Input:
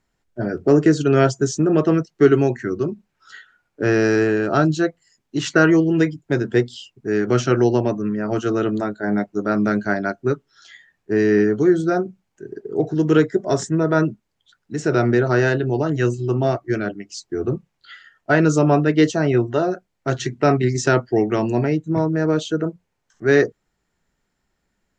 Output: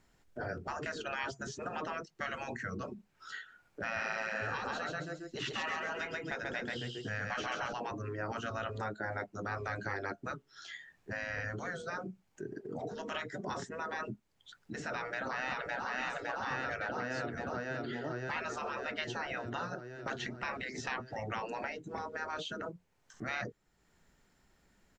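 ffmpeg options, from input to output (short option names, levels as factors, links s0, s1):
-filter_complex "[0:a]asettb=1/sr,asplit=3[s0][s1][s2];[s0]atrim=end=3.824[s3];[s1]atrim=start=3.82:end=7.73,asetpts=PTS-STARTPTS,afade=t=in:d=0.004:c=qsin,afade=t=out:st=3.906:d=0.004:c=qsin,aecho=1:1:136|272|408|544:0.668|0.207|0.0642|0.0199,atrim=end_sample=172431[s4];[s2]atrim=start=7.726[s5];[s3][s4]acrossfade=d=0.004:c1=hsin:c2=qsin[s6];[s6][s5]acrossfade=d=0.004:c1=qsin:c2=hsin,asplit=2[s7][s8];[s8]afade=t=in:st=14.91:d=0.01,afade=t=out:st=15.88:d=0.01,aecho=0:1:560|1120|1680|2240|2800|3360|3920|4480|5040|5600|6160:0.944061|0.61364|0.398866|0.259263|0.168521|0.109538|0.0712|0.04628|0.030082|0.0195533|0.0127096[s9];[s7][s9]amix=inputs=2:normalize=0,acrossover=split=3600[s10][s11];[s11]acompressor=threshold=0.00355:ratio=4:attack=1:release=60[s12];[s10][s12]amix=inputs=2:normalize=0,afftfilt=real='re*lt(hypot(re,im),0.251)':imag='im*lt(hypot(re,im),0.251)':win_size=1024:overlap=0.75,acompressor=threshold=0.00141:ratio=1.5,volume=1.5"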